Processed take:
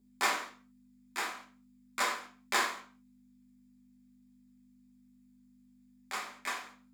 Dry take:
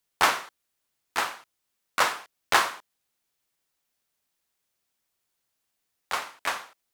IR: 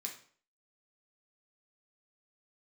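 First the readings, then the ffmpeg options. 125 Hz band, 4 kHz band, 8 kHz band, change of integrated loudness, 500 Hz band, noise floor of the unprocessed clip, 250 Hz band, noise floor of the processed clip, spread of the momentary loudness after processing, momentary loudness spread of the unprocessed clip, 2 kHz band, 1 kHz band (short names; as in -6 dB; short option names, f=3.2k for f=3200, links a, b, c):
under -10 dB, -7.5 dB, -5.0 dB, -7.5 dB, -8.5 dB, -80 dBFS, -3.5 dB, -63 dBFS, 13 LU, 16 LU, -6.5 dB, -8.5 dB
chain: -filter_complex "[0:a]aeval=exprs='val(0)+0.00316*(sin(2*PI*50*n/s)+sin(2*PI*2*50*n/s)/2+sin(2*PI*3*50*n/s)/3+sin(2*PI*4*50*n/s)/4+sin(2*PI*5*50*n/s)/5)':c=same,lowshelf=f=190:t=q:w=3:g=-9.5[a];[1:a]atrim=start_sample=2205,afade=t=out:st=0.28:d=0.01,atrim=end_sample=12789[b];[a][b]afir=irnorm=-1:irlink=0,volume=-5.5dB"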